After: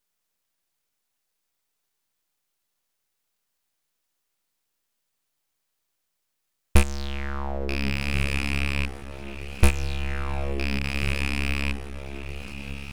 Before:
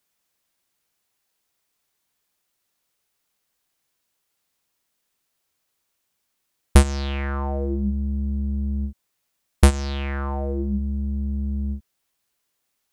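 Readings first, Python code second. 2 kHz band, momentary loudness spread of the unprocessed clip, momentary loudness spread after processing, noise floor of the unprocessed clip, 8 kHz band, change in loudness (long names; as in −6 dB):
+6.5 dB, 9 LU, 13 LU, −76 dBFS, −3.0 dB, −3.5 dB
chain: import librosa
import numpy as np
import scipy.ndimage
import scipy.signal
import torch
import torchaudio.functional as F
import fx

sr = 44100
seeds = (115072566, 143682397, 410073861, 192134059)

y = fx.rattle_buzz(x, sr, strikes_db=-21.0, level_db=-14.0)
y = fx.echo_diffused(y, sr, ms=1634, feedback_pct=42, wet_db=-9)
y = np.maximum(y, 0.0)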